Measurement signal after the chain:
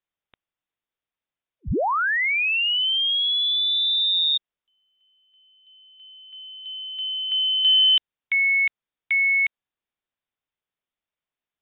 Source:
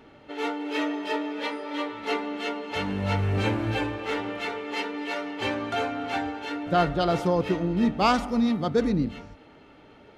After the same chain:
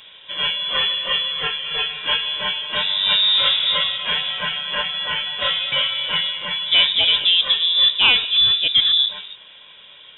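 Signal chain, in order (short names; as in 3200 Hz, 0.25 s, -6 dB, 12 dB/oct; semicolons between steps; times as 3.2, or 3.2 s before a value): soft clip -11.5 dBFS; inverted band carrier 3700 Hz; gain +7.5 dB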